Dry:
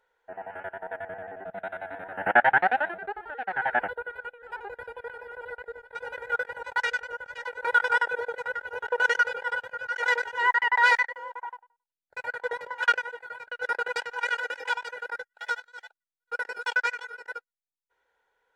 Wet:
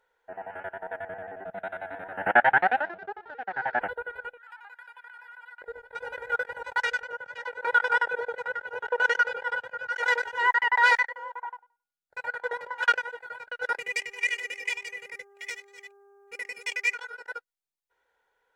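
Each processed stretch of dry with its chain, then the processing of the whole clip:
2.81–3.81 s: companding laws mixed up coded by A + high-pass 92 Hz + distance through air 290 m
4.37–5.62 s: inverse Chebyshev high-pass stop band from 170 Hz, stop band 80 dB + compression 3:1, threshold -44 dBFS
7.03–9.90 s: high-pass 91 Hz 24 dB/octave + treble shelf 6.5 kHz -7.5 dB
11.09–12.78 s: dynamic bell 1.2 kHz, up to +4 dB, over -44 dBFS, Q 0.74 + feedback comb 160 Hz, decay 0.66 s, harmonics odd, mix 30%
13.77–16.93 s: FFT filter 240 Hz 0 dB, 1.5 kHz -23 dB, 2.1 kHz +14 dB, 3.7 kHz -6 dB, 6.2 kHz +7 dB + mains buzz 400 Hz, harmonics 4, -57 dBFS -9 dB/octave
whole clip: none

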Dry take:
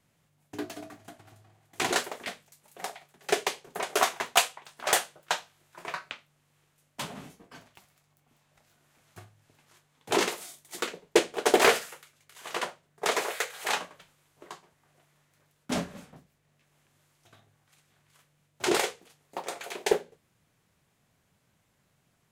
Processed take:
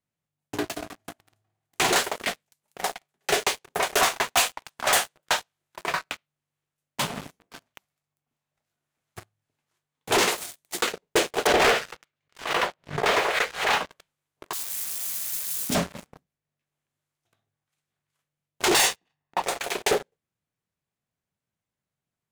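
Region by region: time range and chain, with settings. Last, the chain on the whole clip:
11.47–13.90 s: low-pass 3.6 kHz + swell ahead of each attack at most 120 dB/s
14.53–15.75 s: zero-crossing glitches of -31.5 dBFS + peaking EQ 1.1 kHz -14.5 dB 2.6 oct
18.74–19.42 s: level-controlled noise filter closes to 1.5 kHz, open at -23.5 dBFS + treble shelf 2.4 kHz +8.5 dB + comb 1.1 ms, depth 50%
whole clip: dynamic bell 270 Hz, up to -5 dB, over -43 dBFS, Q 1.1; waveshaping leveller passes 5; trim -8 dB

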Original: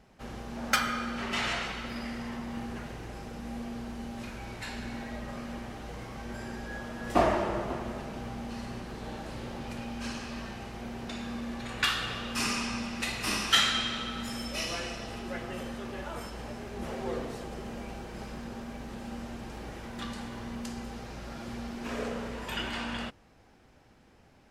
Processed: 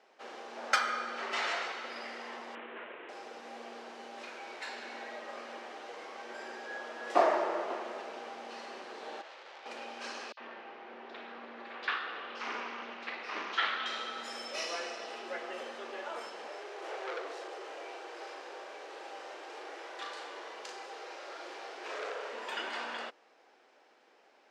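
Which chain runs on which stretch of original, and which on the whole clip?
2.55–3.09 s: CVSD coder 16 kbps + band-stop 780 Hz, Q 7.7
9.21–9.66 s: high-pass 580 Hz + distance through air 98 m + transformer saturation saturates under 3.3 kHz
10.32–13.86 s: distance through air 280 m + three bands offset in time highs, mids, lows 50/80 ms, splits 590/4400 Hz + loudspeaker Doppler distortion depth 0.28 ms
16.48–22.33 s: steep high-pass 290 Hz 72 dB/octave + doubling 38 ms -4 dB + transformer saturation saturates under 2.3 kHz
whole clip: high-pass 390 Hz 24 dB/octave; dynamic bell 2.9 kHz, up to -5 dB, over -46 dBFS, Q 1.8; low-pass 5.7 kHz 12 dB/octave

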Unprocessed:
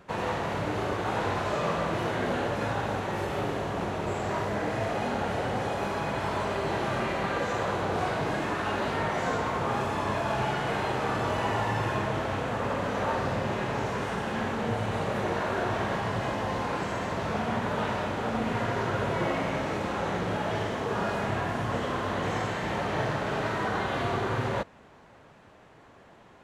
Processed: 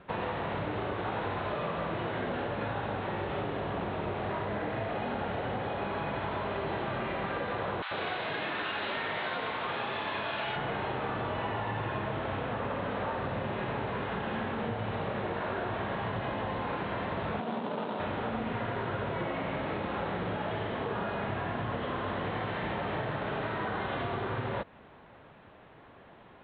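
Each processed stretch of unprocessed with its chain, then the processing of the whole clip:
7.82–10.56 s: tilt EQ +3.5 dB/octave + bands offset in time highs, lows 90 ms, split 1 kHz
17.40–18.00 s: median filter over 25 samples + high-pass 180 Hz 24 dB/octave
whole clip: steep low-pass 3.9 kHz 72 dB/octave; compression, threshold -30 dBFS

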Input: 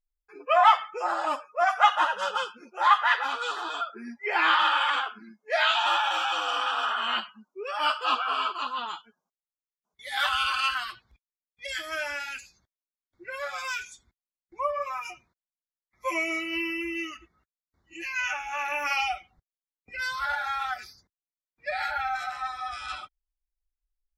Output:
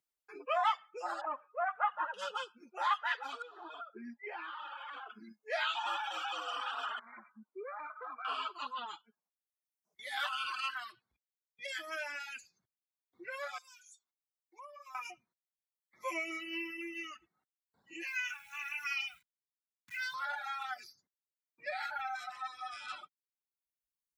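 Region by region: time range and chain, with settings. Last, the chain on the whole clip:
1.21–2.14 s: companding laws mixed up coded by mu + low-pass 1.8 kHz 24 dB/octave + bass shelf 220 Hz -10.5 dB
3.42–5.10 s: compression 4:1, threshold -32 dBFS + tape spacing loss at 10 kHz 27 dB
6.99–8.25 s: block-companded coder 7-bit + brick-wall FIR band-pass 180–2400 Hz + compression 10:1, threshold -34 dBFS
13.58–14.95 s: high-pass 970 Hz + peaking EQ 1.9 kHz -13.5 dB 1.5 oct + compression 2.5:1, threshold -51 dBFS
18.07–20.14 s: send-on-delta sampling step -46 dBFS + Chebyshev band-stop 140–1800 Hz + comb 2 ms, depth 53%
whole clip: reverb removal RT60 1.3 s; high-pass 170 Hz; three bands compressed up and down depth 40%; trim -8 dB

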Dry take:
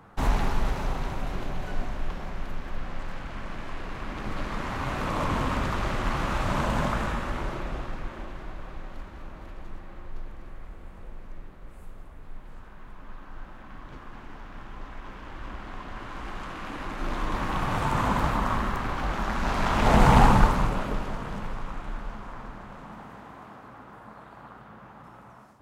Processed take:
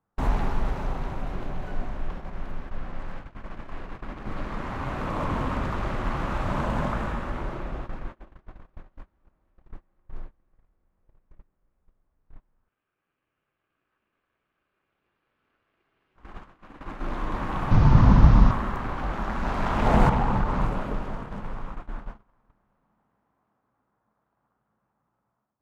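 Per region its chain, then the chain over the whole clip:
12.68–16.16 s: high-pass 64 Hz 24 dB/octave + ring modulator 1.4 kHz + loudspeaker Doppler distortion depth 0.22 ms
17.71–18.51 s: one-bit delta coder 32 kbps, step -28 dBFS + tone controls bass +15 dB, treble -1 dB
20.09–20.61 s: Bessel low-pass 5.9 kHz + compression, threshold -18 dBFS
whole clip: gate -33 dBFS, range -28 dB; treble shelf 2.6 kHz -10 dB

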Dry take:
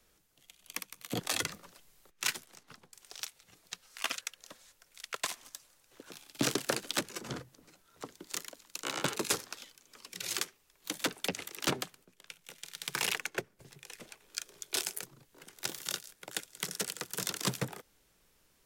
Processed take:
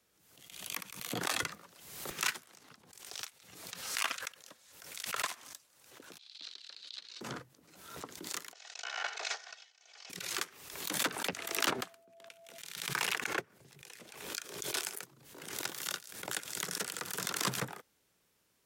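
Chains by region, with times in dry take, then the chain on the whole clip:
6.18–7.21 s: band-pass filter 4.1 kHz, Q 5.3 + distance through air 75 m
8.53–10.10 s: comb filter that takes the minimum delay 2.7 ms + elliptic band-pass 600–6200 Hz + peaking EQ 1.1 kHz -12 dB 0.22 oct
11.35–12.57 s: peaking EQ 150 Hz -15 dB 0.26 oct + whistle 670 Hz -58 dBFS + tape noise reduction on one side only decoder only
whole clip: high-pass 87 Hz; dynamic bell 1.3 kHz, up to +7 dB, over -51 dBFS, Q 0.85; swell ahead of each attack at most 56 dB/s; trim -4.5 dB

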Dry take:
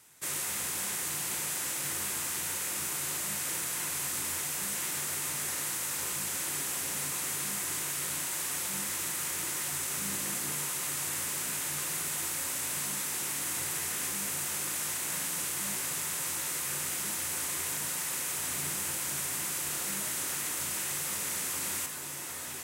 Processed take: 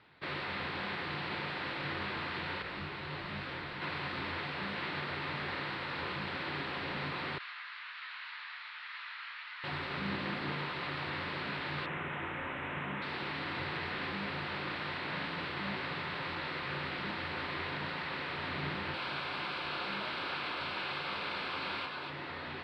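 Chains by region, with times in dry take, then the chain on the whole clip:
2.62–3.82 s: bass shelf 83 Hz +11.5 dB + detune thickener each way 45 cents
7.38–9.64 s: high-pass 1.2 kHz 24 dB/octave + distance through air 82 m + detune thickener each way 40 cents
11.86–13.02 s: Butterworth band-stop 4.7 kHz, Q 1.1 + peaking EQ 14 kHz -12.5 dB 0.63 oct
18.94–22.10 s: bass shelf 370 Hz -11.5 dB + band-stop 1.9 kHz, Q 5.1 + waveshaping leveller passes 1
whole clip: elliptic low-pass 4.3 kHz, stop band 40 dB; treble shelf 3.4 kHz -10.5 dB; trim +5.5 dB

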